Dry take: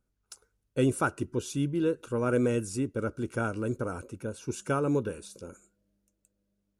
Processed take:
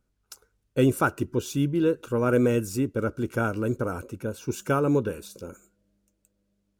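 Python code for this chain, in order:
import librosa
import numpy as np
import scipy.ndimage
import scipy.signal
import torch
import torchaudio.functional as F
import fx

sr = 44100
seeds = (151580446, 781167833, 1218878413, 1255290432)

y = np.interp(np.arange(len(x)), np.arange(len(x))[::2], x[::2])
y = y * 10.0 ** (4.5 / 20.0)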